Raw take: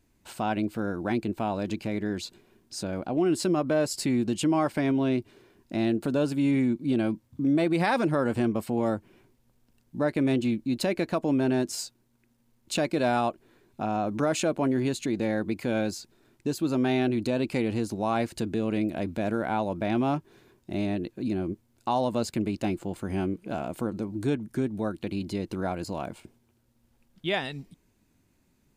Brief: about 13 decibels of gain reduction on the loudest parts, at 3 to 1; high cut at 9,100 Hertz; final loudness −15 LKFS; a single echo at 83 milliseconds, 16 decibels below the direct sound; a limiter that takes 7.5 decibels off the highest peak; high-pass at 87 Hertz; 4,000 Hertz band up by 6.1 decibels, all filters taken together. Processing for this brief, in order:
high-pass filter 87 Hz
low-pass filter 9,100 Hz
parametric band 4,000 Hz +7.5 dB
downward compressor 3 to 1, threshold −39 dBFS
brickwall limiter −30 dBFS
single-tap delay 83 ms −16 dB
level +26 dB

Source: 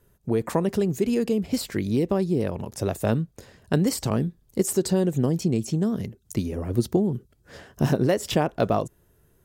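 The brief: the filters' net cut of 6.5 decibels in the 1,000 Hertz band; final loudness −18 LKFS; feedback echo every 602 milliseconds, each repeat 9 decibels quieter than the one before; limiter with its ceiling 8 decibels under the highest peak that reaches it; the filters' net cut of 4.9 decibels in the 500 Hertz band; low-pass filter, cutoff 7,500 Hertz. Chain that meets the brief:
low-pass filter 7,500 Hz
parametric band 500 Hz −5 dB
parametric band 1,000 Hz −7 dB
brickwall limiter −18 dBFS
repeating echo 602 ms, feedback 35%, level −9 dB
level +10.5 dB

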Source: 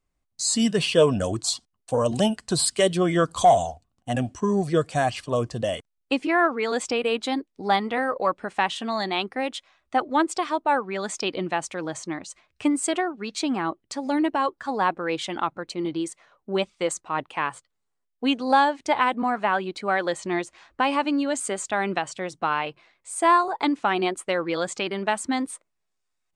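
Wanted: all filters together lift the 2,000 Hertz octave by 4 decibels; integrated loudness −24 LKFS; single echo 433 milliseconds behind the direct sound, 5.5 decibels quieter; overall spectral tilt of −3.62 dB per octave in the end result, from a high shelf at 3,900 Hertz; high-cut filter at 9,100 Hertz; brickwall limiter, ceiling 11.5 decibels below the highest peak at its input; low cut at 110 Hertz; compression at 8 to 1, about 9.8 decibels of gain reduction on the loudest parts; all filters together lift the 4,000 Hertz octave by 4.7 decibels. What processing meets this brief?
high-pass filter 110 Hz
low-pass filter 9,100 Hz
parametric band 2,000 Hz +4.5 dB
high-shelf EQ 3,900 Hz −5 dB
parametric band 4,000 Hz +7.5 dB
downward compressor 8 to 1, threshold −22 dBFS
brickwall limiter −19 dBFS
single-tap delay 433 ms −5.5 dB
level +5 dB

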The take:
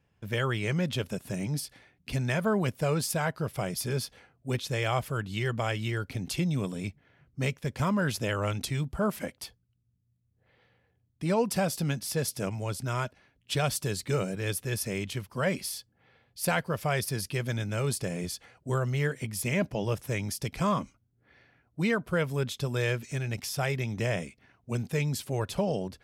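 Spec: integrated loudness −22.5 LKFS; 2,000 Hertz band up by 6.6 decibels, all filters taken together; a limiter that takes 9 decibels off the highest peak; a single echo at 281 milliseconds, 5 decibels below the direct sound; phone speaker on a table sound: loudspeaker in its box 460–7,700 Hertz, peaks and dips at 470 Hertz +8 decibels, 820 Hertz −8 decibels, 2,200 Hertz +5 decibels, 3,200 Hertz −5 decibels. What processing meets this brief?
parametric band 2,000 Hz +6 dB
brickwall limiter −19.5 dBFS
loudspeaker in its box 460–7,700 Hz, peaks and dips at 470 Hz +8 dB, 820 Hz −8 dB, 2,200 Hz +5 dB, 3,200 Hz −5 dB
single-tap delay 281 ms −5 dB
level +10 dB

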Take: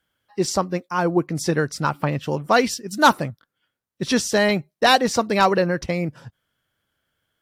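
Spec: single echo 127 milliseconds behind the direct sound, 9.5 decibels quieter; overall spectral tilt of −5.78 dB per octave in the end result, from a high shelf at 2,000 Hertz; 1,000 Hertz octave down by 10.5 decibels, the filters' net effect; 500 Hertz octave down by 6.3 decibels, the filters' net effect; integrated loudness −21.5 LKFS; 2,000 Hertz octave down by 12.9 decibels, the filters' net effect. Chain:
parametric band 500 Hz −4.5 dB
parametric band 1,000 Hz −8.5 dB
high-shelf EQ 2,000 Hz −8 dB
parametric band 2,000 Hz −9 dB
single-tap delay 127 ms −9.5 dB
level +4.5 dB

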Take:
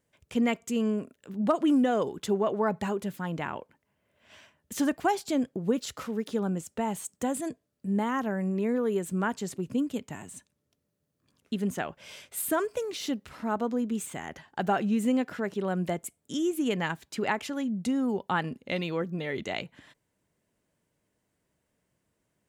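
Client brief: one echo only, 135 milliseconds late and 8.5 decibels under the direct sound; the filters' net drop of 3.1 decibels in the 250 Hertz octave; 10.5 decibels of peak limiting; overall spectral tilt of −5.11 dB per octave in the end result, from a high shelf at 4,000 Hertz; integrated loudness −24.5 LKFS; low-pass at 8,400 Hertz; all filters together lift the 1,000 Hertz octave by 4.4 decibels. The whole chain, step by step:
low-pass filter 8,400 Hz
parametric band 250 Hz −4 dB
parametric band 1,000 Hz +6.5 dB
high-shelf EQ 4,000 Hz −7.5 dB
brickwall limiter −21 dBFS
single-tap delay 135 ms −8.5 dB
level +8 dB

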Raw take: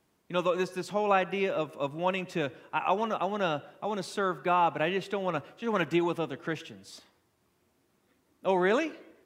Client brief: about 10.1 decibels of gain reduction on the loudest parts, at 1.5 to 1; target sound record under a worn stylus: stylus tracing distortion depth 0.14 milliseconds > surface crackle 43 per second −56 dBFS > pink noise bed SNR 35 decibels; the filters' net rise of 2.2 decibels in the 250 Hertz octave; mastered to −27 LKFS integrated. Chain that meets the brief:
parametric band 250 Hz +3.5 dB
downward compressor 1.5 to 1, threshold −49 dBFS
stylus tracing distortion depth 0.14 ms
surface crackle 43 per second −56 dBFS
pink noise bed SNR 35 dB
level +11.5 dB

